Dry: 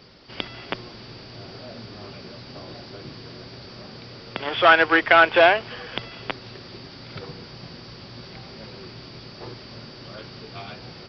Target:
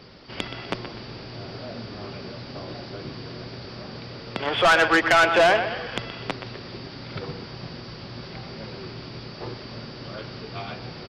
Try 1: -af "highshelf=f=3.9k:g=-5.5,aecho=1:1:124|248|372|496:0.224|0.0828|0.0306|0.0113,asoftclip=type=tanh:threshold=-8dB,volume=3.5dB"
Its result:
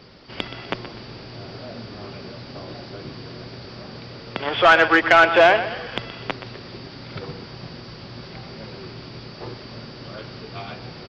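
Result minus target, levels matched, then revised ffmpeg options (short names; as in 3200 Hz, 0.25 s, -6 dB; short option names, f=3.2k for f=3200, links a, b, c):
soft clip: distortion -9 dB
-af "highshelf=f=3.9k:g=-5.5,aecho=1:1:124|248|372|496:0.224|0.0828|0.0306|0.0113,asoftclip=type=tanh:threshold=-16dB,volume=3.5dB"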